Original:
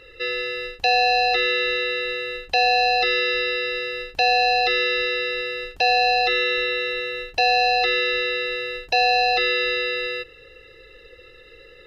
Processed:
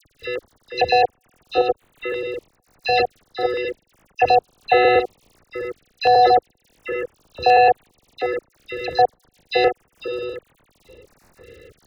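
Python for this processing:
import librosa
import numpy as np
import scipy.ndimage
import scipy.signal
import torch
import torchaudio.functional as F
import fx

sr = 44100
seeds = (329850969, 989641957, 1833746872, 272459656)

p1 = fx.local_reverse(x, sr, ms=109.0)
p2 = scipy.signal.sosfilt(scipy.signal.butter(4, 72.0, 'highpass', fs=sr, output='sos'), p1)
p3 = p2 + 10.0 ** (-7.5 / 20.0) * np.pad(p2, (int(365 * sr / 1000.0), 0))[:len(p2)]
p4 = fx.step_gate(p3, sr, bpm=90, pattern='.x..xx..', floor_db=-60.0, edge_ms=4.5)
p5 = fx.level_steps(p4, sr, step_db=22)
p6 = p4 + (p5 * librosa.db_to_amplitude(2.0))
p7 = fx.high_shelf(p6, sr, hz=2500.0, db=-8.5)
p8 = fx.dmg_crackle(p7, sr, seeds[0], per_s=75.0, level_db=-34.0)
p9 = fx.tilt_eq(p8, sr, slope=-2.0)
p10 = fx.dispersion(p9, sr, late='lows', ms=54.0, hz=2300.0)
p11 = fx.filter_held_notch(p10, sr, hz=2.8, low_hz=950.0, high_hz=5200.0)
y = p11 * librosa.db_to_amplitude(2.5)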